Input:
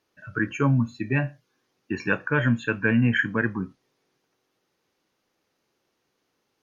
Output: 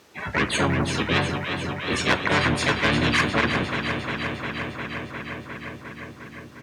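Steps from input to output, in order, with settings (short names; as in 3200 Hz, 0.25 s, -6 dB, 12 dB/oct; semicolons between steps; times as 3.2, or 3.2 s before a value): HPF 51 Hz 12 dB/oct; harmoniser -7 st -3 dB, +4 st -3 dB, +7 st -9 dB; in parallel at -9 dB: soft clip -17.5 dBFS, distortion -10 dB; on the sum: echo with dull and thin repeats by turns 0.177 s, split 860 Hz, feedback 82%, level -10.5 dB; spectral compressor 2:1; gain -3 dB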